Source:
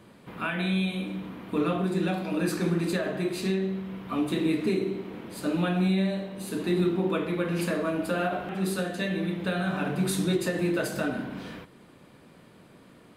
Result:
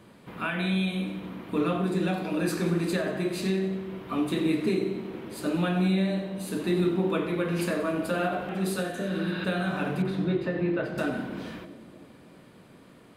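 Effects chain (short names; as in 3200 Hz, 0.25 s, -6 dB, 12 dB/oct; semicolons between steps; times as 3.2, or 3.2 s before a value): 8.94–9.42 spectral repair 760–5600 Hz both; 10.02–10.98 air absorption 370 m; on a send: split-band echo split 680 Hz, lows 0.316 s, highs 91 ms, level -14 dB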